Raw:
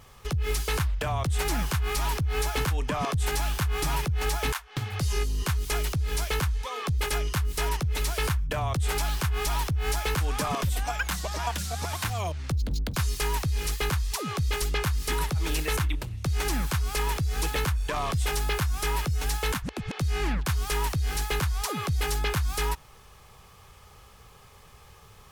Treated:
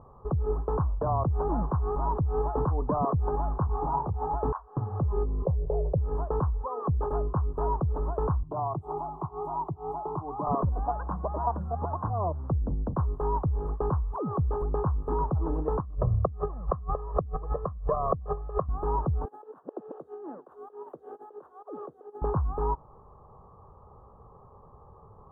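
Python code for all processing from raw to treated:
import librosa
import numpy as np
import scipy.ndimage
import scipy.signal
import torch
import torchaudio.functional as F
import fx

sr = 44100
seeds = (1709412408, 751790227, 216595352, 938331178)

y = fx.chain(x, sr, fx.peak_eq(hz=850.0, db=9.5, octaves=0.46),
    fx.detune_double(cents=36), at=(3.67, 4.34))
y = fx.chain(y, sr, fx.curve_eq(hz=(170.0, 250.0, 540.0, 1300.0, 2300.0), db=(0, -17, 8, -28, -13)),
    fx.env_flatten(amount_pct=50), at=(5.45, 5.98))
y = fx.chain(y, sr, fx.highpass(hz=190.0, slope=6),
    fx.fixed_phaser(hz=340.0, stages=8), at=(8.43, 10.47))
y = fx.chain(y, sr, fx.comb(ms=1.7, depth=0.81),
    fx.over_compress(threshold_db=-28.0, ratio=-0.5),
    fx.brickwall_lowpass(high_hz=3600.0), at=(15.8, 18.69))
y = fx.chain(y, sr, fx.highpass(hz=380.0, slope=24),
    fx.peak_eq(hz=1000.0, db=-15.0, octaves=1.1),
    fx.over_compress(threshold_db=-39.0, ratio=-0.5), at=(19.25, 22.22))
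y = scipy.signal.sosfilt(scipy.signal.ellip(4, 1.0, 50, 1100.0, 'lowpass', fs=sr, output='sos'), y)
y = fx.low_shelf(y, sr, hz=94.0, db=-6.0)
y = y * librosa.db_to_amplitude(4.0)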